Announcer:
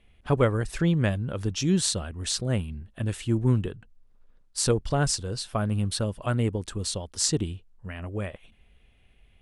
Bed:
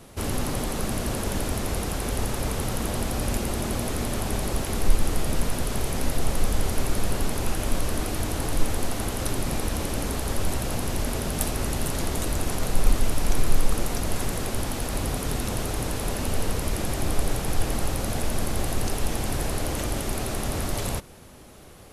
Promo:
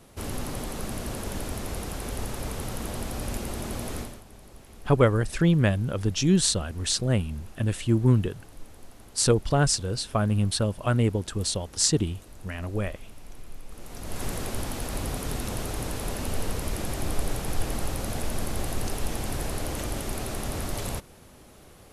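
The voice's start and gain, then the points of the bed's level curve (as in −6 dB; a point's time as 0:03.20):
4.60 s, +2.5 dB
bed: 0:03.99 −5.5 dB
0:04.24 −22 dB
0:13.65 −22 dB
0:14.26 −3.5 dB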